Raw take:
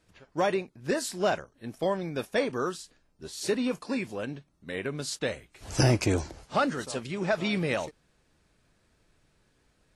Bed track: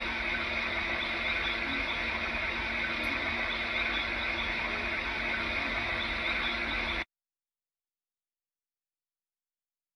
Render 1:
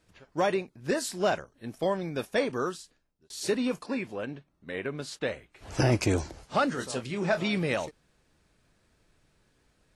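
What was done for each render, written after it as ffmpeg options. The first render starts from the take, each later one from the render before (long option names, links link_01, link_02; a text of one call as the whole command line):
ffmpeg -i in.wav -filter_complex "[0:a]asettb=1/sr,asplit=3[link_01][link_02][link_03];[link_01]atrim=end=3.864[link_04];[link_02]atrim=start=3.86:end=5.92,asetpts=PTS-STARTPTS,afade=type=in:duration=0.004:curve=qsin,afade=type=out:start_time=2.056:duration=0.004:curve=qsin,bass=frequency=250:gain=-3,treble=frequency=4000:gain=-9[link_05];[link_03]atrim=start=5.916[link_06];[link_04][link_05]acrossfade=duration=0.004:curve1=hsin:curve2=qsin[link_07];[link_07][link_06]acrossfade=duration=0.004:curve1=qsin:curve2=hsin,asettb=1/sr,asplit=3[link_08][link_09][link_10];[link_08]atrim=end=6.724[link_11];[link_09]atrim=start=6.72:end=7.43,asetpts=PTS-STARTPTS,afade=type=in:duration=0.004:curve=qsin,afade=type=out:start_time=0.706:duration=0.004:curve=qsin,asplit=2[link_12][link_13];[link_13]adelay=24,volume=-8.5dB[link_14];[link_12][link_14]amix=inputs=2:normalize=0,atrim=end_sample=31311[link_15];[link_10]atrim=start=7.426[link_16];[link_11][link_15]acrossfade=duration=0.004:curve1=hsin:curve2=qsin[link_17];[link_17][link_16]acrossfade=duration=0.004:curve1=qsin:curve2=hsin,asplit=2[link_18][link_19];[link_18]atrim=end=3.3,asetpts=PTS-STARTPTS,afade=type=out:start_time=2.62:duration=0.68[link_20];[link_19]atrim=start=3.3,asetpts=PTS-STARTPTS,afade=type=in:duration=0.004:curve=hsin[link_21];[link_20][link_21]concat=n=2:v=0:a=1" out.wav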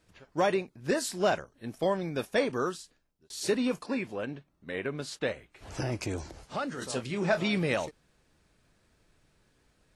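ffmpeg -i in.wav -filter_complex "[0:a]asettb=1/sr,asplit=3[link_01][link_02][link_03];[link_01]atrim=end=5.324[link_04];[link_02]atrim=start=5.32:end=6.82,asetpts=PTS-STARTPTS,afade=type=in:duration=0.004:curve=qsin,afade=type=out:start_time=1.496:duration=0.004:curve=qsin,acompressor=threshold=-43dB:ratio=1.5:attack=3.2:release=140:knee=1:detection=peak[link_05];[link_03]atrim=start=6.816[link_06];[link_04][link_05]acrossfade=duration=0.004:curve1=hsin:curve2=qsin[link_07];[link_07][link_06]acrossfade=duration=0.004:curve1=qsin:curve2=hsin" out.wav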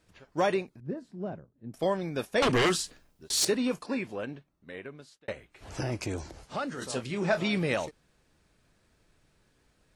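ffmpeg -i in.wav -filter_complex "[0:a]asettb=1/sr,asplit=3[link_01][link_02][link_03];[link_01]atrim=end=0.804[link_04];[link_02]atrim=start=0.8:end=1.74,asetpts=PTS-STARTPTS,afade=type=in:duration=0.004:curve=qsin,afade=type=out:start_time=0.936:duration=0.004:curve=qsin,bandpass=frequency=150:width_type=q:width=1.1[link_05];[link_03]atrim=start=1.736[link_06];[link_04][link_05]acrossfade=duration=0.004:curve1=hsin:curve2=qsin[link_07];[link_07][link_06]acrossfade=duration=0.004:curve1=qsin:curve2=hsin,asettb=1/sr,asplit=3[link_08][link_09][link_10];[link_08]atrim=end=2.424[link_11];[link_09]atrim=start=2.42:end=3.45,asetpts=PTS-STARTPTS,afade=type=in:duration=0.004:curve=qsin,afade=type=out:start_time=1.026:duration=0.004:curve=qsin,aeval=exprs='0.1*sin(PI/2*3.16*val(0)/0.1)':channel_layout=same[link_12];[link_10]atrim=start=3.446[link_13];[link_11][link_12]acrossfade=duration=0.004:curve1=hsin:curve2=qsin[link_14];[link_14][link_13]acrossfade=duration=0.004:curve1=qsin:curve2=hsin,asplit=2[link_15][link_16];[link_15]atrim=end=5.28,asetpts=PTS-STARTPTS,afade=type=out:start_time=4.12:duration=1.16[link_17];[link_16]atrim=start=5.28,asetpts=PTS-STARTPTS,afade=type=in:duration=0.004:curve=hsin[link_18];[link_17][link_18]concat=n=2:v=0:a=1" out.wav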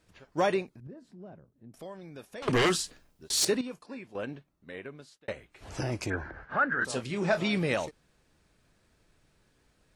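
ffmpeg -i in.wav -filter_complex "[0:a]asettb=1/sr,asplit=3[link_01][link_02][link_03];[link_01]atrim=end=0.874[link_04];[link_02]atrim=start=0.87:end=2.48,asetpts=PTS-STARTPTS,afade=type=in:duration=0.004:curve=qsin,afade=type=out:start_time=1.606:duration=0.004:curve=qsin,acompressor=threshold=-52dB:ratio=2:attack=3.2:release=140:knee=1:detection=peak[link_05];[link_03]atrim=start=2.476[link_06];[link_04][link_05]acrossfade=duration=0.004:curve1=hsin:curve2=qsin[link_07];[link_07][link_06]acrossfade=duration=0.004:curve1=qsin:curve2=hsin,asettb=1/sr,asplit=3[link_08][link_09][link_10];[link_08]atrim=end=6.104[link_11];[link_09]atrim=start=6.1:end=6.85,asetpts=PTS-STARTPTS,afade=type=in:duration=0.004:curve=qsin,afade=type=out:start_time=0.746:duration=0.004:curve=qsin,lowpass=frequency=1600:width_type=q:width=9.4[link_12];[link_10]atrim=start=6.846[link_13];[link_11][link_12]acrossfade=duration=0.004:curve1=hsin:curve2=qsin[link_14];[link_14][link_13]acrossfade=duration=0.004:curve1=qsin:curve2=hsin,asplit=3[link_15][link_16][link_17];[link_15]atrim=end=3.612[link_18];[link_16]atrim=start=3.608:end=4.152,asetpts=PTS-STARTPTS,volume=-10.5dB[link_19];[link_17]atrim=start=4.148[link_20];[link_18][link_19]acrossfade=duration=0.004:curve1=hsin:curve2=hsin[link_21];[link_21][link_20]acrossfade=duration=0.004:curve1=hsin:curve2=hsin" out.wav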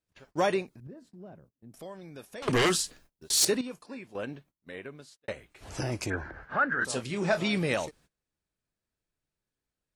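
ffmpeg -i in.wav -af "agate=range=-22dB:threshold=-57dB:ratio=16:detection=peak,highshelf=frequency=6800:gain=6.5" out.wav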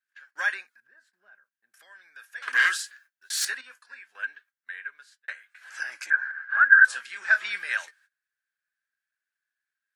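ffmpeg -i in.wav -af "highpass=frequency=1600:width_type=q:width=12,flanger=delay=3.4:depth=1.6:regen=74:speed=0.32:shape=sinusoidal" out.wav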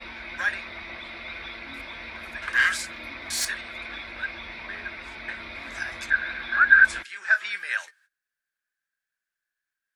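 ffmpeg -i in.wav -i bed.wav -filter_complex "[1:a]volume=-6.5dB[link_01];[0:a][link_01]amix=inputs=2:normalize=0" out.wav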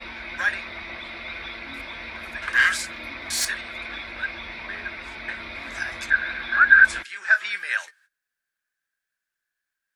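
ffmpeg -i in.wav -af "volume=2.5dB,alimiter=limit=-3dB:level=0:latency=1" out.wav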